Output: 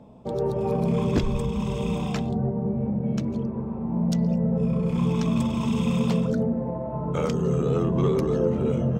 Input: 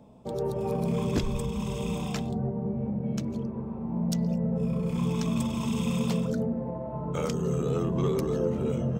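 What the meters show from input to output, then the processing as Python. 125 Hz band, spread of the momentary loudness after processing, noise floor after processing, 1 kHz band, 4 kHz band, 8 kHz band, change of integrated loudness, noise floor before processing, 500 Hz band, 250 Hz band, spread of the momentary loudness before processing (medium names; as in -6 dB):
+4.5 dB, 5 LU, -31 dBFS, +4.0 dB, +1.0 dB, -2.5 dB, +4.5 dB, -36 dBFS, +4.5 dB, +4.5 dB, 5 LU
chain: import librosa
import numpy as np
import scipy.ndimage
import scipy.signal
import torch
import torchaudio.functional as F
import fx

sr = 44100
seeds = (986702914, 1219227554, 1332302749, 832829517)

y = fx.lowpass(x, sr, hz=3400.0, slope=6)
y = y * 10.0 ** (4.5 / 20.0)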